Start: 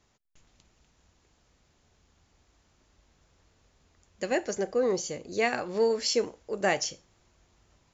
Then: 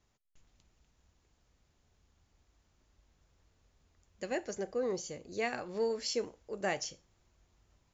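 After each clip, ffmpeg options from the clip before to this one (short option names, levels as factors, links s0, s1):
-af "lowshelf=f=95:g=7,volume=0.398"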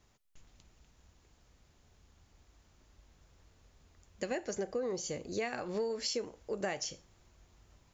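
-af "acompressor=threshold=0.0112:ratio=6,volume=2.11"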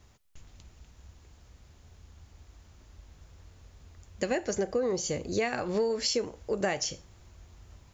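-af "equalizer=f=75:w=1.2:g=8,volume=2.11"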